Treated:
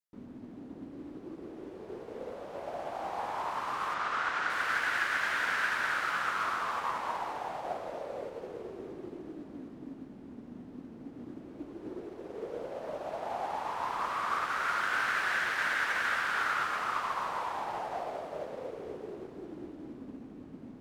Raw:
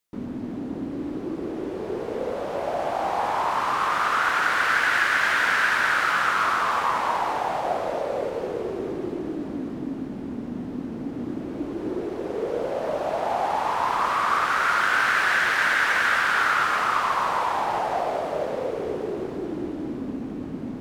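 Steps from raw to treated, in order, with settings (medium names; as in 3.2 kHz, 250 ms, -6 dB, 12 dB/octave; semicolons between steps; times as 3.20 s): 3.94–4.50 s: low-pass 6.6 kHz 12 dB/octave; upward expansion 1.5:1, over -33 dBFS; trim -8.5 dB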